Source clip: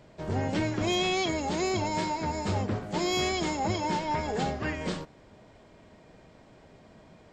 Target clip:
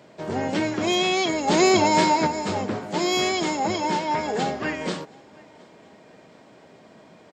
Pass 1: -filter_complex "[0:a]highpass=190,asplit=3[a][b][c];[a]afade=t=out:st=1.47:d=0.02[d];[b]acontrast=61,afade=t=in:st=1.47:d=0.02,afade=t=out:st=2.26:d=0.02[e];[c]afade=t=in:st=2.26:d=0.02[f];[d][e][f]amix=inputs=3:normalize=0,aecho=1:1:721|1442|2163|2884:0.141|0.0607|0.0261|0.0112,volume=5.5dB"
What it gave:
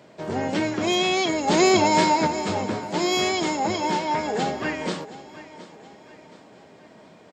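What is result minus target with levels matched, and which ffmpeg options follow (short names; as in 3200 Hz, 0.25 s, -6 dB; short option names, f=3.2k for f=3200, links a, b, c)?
echo-to-direct +10.5 dB
-filter_complex "[0:a]highpass=190,asplit=3[a][b][c];[a]afade=t=out:st=1.47:d=0.02[d];[b]acontrast=61,afade=t=in:st=1.47:d=0.02,afade=t=out:st=2.26:d=0.02[e];[c]afade=t=in:st=2.26:d=0.02[f];[d][e][f]amix=inputs=3:normalize=0,aecho=1:1:721|1442:0.0422|0.0181,volume=5.5dB"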